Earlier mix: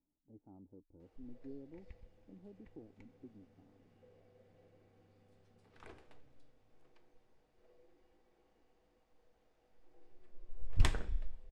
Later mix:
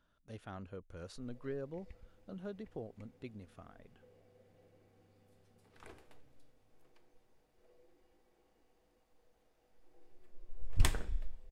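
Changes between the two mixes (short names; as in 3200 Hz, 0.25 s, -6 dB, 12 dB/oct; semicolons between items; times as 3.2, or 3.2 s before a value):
speech: remove vocal tract filter u; master: remove air absorption 63 m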